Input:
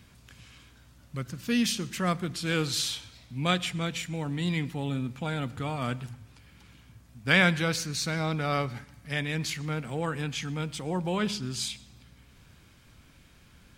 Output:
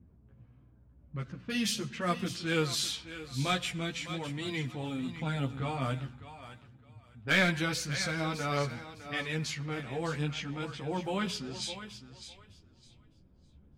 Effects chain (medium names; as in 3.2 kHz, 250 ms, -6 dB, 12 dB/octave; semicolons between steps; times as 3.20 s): level-controlled noise filter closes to 410 Hz, open at -26.5 dBFS; hard clipper -13.5 dBFS, distortion -20 dB; on a send: thinning echo 608 ms, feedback 22%, high-pass 320 Hz, level -11 dB; on the sum: chorus voices 2, 0.44 Hz, delay 12 ms, depth 3.5 ms